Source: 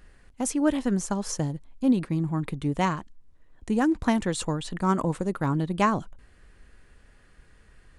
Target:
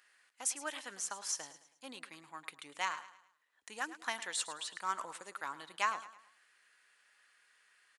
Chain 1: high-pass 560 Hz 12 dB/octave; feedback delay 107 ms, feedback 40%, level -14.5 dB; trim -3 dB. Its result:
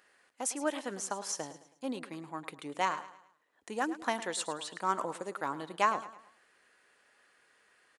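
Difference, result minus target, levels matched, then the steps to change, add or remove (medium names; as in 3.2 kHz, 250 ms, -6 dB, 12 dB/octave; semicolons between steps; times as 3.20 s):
500 Hz band +9.0 dB
change: high-pass 1.4 kHz 12 dB/octave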